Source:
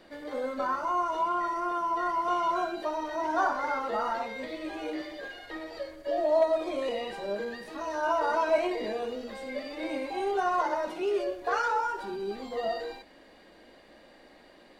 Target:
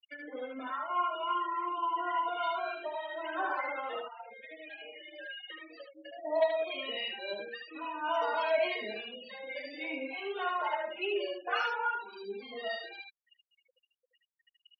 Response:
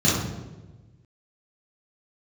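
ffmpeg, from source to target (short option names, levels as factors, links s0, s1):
-filter_complex "[0:a]asplit=3[s0][s1][s2];[s0]afade=t=out:st=3.99:d=0.02[s3];[s1]acompressor=threshold=0.00891:ratio=4,afade=t=in:st=3.99:d=0.02,afade=t=out:st=6.24:d=0.02[s4];[s2]afade=t=in:st=6.24:d=0.02[s5];[s3][s4][s5]amix=inputs=3:normalize=0,acrossover=split=660[s6][s7];[s6]aeval=exprs='val(0)*(1-0.5/2+0.5/2*cos(2*PI*3.5*n/s))':c=same[s8];[s7]aeval=exprs='val(0)*(1-0.5/2-0.5/2*cos(2*PI*3.5*n/s))':c=same[s9];[s8][s9]amix=inputs=2:normalize=0,aeval=exprs='val(0)+0.00158*(sin(2*PI*50*n/s)+sin(2*PI*2*50*n/s)/2+sin(2*PI*3*50*n/s)/3+sin(2*PI*4*50*n/s)/4+sin(2*PI*5*50*n/s)/5)':c=same,aeval=exprs='sgn(val(0))*max(abs(val(0))-0.002,0)':c=same,highpass=210,equalizer=f=2800:w=0.95:g=14.5,acompressor=mode=upward:threshold=0.0224:ratio=2.5,afftfilt=real='re*gte(hypot(re,im),0.0251)':imag='im*gte(hypot(re,im),0.0251)':win_size=1024:overlap=0.75,aecho=1:1:76:0.631,asplit=2[s10][s11];[s11]adelay=3.5,afreqshift=-0.52[s12];[s10][s12]amix=inputs=2:normalize=1,volume=0.708"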